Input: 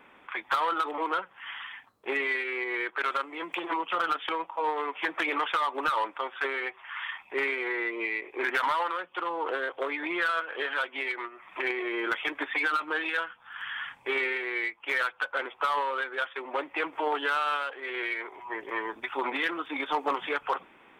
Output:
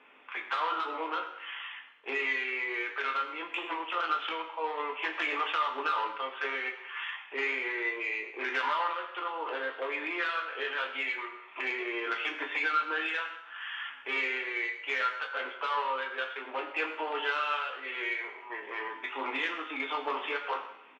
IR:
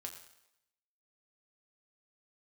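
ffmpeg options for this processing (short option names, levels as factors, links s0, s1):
-filter_complex "[0:a]equalizer=f=2700:w=3:g=7,asoftclip=type=tanh:threshold=0.15,highpass=270,lowpass=5100,asplit=2[s0][s1];[s1]adelay=19,volume=0.299[s2];[s0][s2]amix=inputs=2:normalize=0[s3];[1:a]atrim=start_sample=2205[s4];[s3][s4]afir=irnorm=-1:irlink=0"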